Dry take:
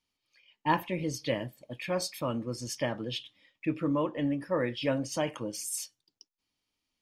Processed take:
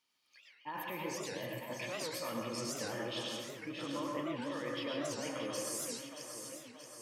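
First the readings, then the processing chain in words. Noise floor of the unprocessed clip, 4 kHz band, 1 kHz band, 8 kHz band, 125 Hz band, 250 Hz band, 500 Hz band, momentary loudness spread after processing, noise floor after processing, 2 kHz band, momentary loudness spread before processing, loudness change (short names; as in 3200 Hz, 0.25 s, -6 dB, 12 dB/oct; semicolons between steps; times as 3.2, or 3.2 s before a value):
under -85 dBFS, -2.5 dB, -8.0 dB, -3.0 dB, -11.5 dB, -9.0 dB, -7.0 dB, 7 LU, -65 dBFS, -4.5 dB, 7 LU, -7.0 dB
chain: HPF 500 Hz 6 dB/oct; bell 1200 Hz +3 dB 0.77 oct; reverse; compressor 5:1, threshold -40 dBFS, peak gain reduction 17 dB; reverse; limiter -36.5 dBFS, peak gain reduction 8.5 dB; on a send: echo with dull and thin repeats by turns 0.314 s, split 1900 Hz, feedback 75%, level -5 dB; on the sum: plate-style reverb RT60 0.61 s, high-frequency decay 0.95×, pre-delay 90 ms, DRR 0.5 dB; record warp 78 rpm, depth 250 cents; gain +3 dB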